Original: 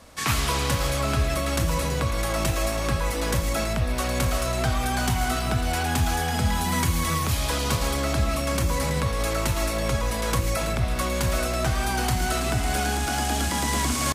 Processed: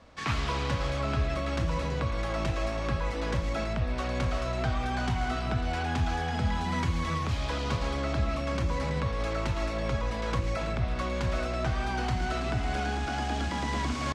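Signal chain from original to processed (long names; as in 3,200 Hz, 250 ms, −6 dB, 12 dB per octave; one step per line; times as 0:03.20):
high-frequency loss of the air 150 metres
level −4.5 dB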